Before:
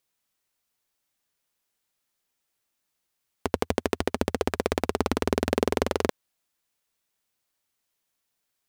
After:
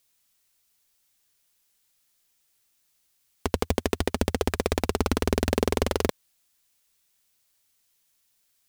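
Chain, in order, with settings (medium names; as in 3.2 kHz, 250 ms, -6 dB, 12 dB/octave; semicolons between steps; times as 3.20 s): treble shelf 2.1 kHz +10.5 dB; saturation -8 dBFS, distortion -10 dB; bass shelf 130 Hz +9.5 dB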